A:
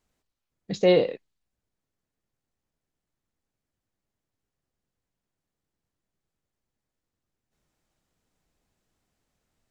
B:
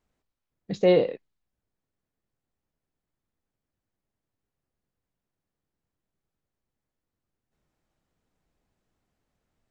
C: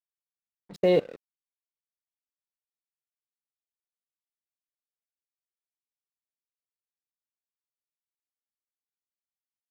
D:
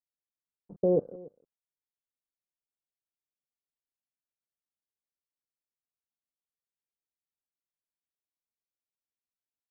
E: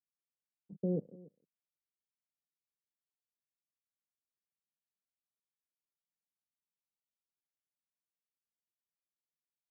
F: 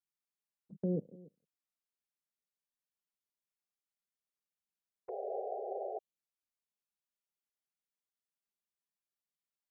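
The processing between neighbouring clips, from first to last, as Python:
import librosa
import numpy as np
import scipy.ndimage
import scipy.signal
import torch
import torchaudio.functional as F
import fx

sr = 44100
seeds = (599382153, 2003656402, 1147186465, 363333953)

y1 = fx.high_shelf(x, sr, hz=3300.0, db=-8.5)
y2 = fx.level_steps(y1, sr, step_db=21)
y2 = np.sign(y2) * np.maximum(np.abs(y2) - 10.0 ** (-48.0 / 20.0), 0.0)
y2 = y2 * 10.0 ** (2.0 / 20.0)
y3 = scipy.ndimage.gaussian_filter1d(y2, 11.0, mode='constant')
y3 = y3 + 10.0 ** (-21.5 / 20.0) * np.pad(y3, (int(287 * sr / 1000.0), 0))[:len(y3)]
y3 = y3 * 10.0 ** (-1.0 / 20.0)
y4 = fx.bandpass_q(y3, sr, hz=180.0, q=1.8)
y4 = y4 * 10.0 ** (-1.0 / 20.0)
y5 = fx.spec_paint(y4, sr, seeds[0], shape='noise', start_s=5.08, length_s=0.91, low_hz=370.0, high_hz=810.0, level_db=-38.0)
y5 = fx.env_flanger(y5, sr, rest_ms=5.0, full_db=-44.5)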